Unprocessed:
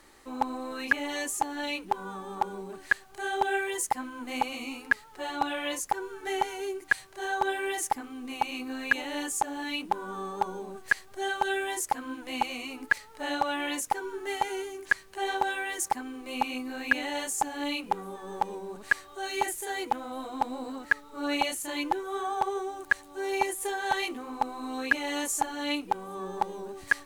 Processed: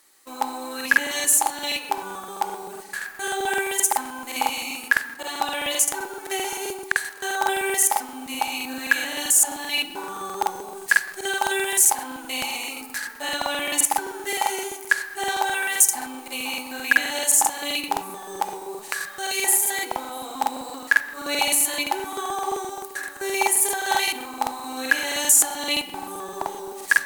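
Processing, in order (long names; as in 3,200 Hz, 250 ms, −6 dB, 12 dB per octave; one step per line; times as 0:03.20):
noise gate −46 dBFS, range −11 dB
RIAA equalisation recording
on a send at −7.5 dB: convolution reverb RT60 1.4 s, pre-delay 3 ms
on the sum: regular buffer underruns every 0.13 s, samples 2,048, repeat, from 0:00.76
level +3.5 dB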